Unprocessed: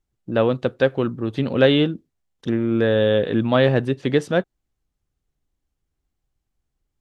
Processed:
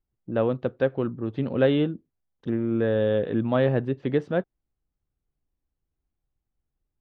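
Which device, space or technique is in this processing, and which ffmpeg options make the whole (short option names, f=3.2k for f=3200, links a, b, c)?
phone in a pocket: -af "lowpass=4k,highshelf=f=2k:g=-9.5,volume=-4.5dB"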